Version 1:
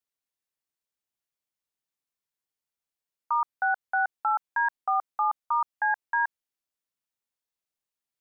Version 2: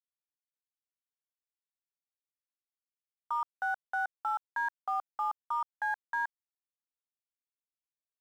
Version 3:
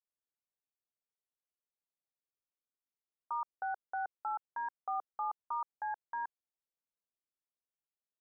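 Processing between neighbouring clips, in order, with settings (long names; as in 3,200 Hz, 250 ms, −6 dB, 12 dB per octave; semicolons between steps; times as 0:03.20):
brickwall limiter −24.5 dBFS, peak gain reduction 6.5 dB; dead-zone distortion −55.5 dBFS
low-pass filter 1,300 Hz 24 dB per octave; parametric band 460 Hz +4.5 dB 1.1 octaves; level −4 dB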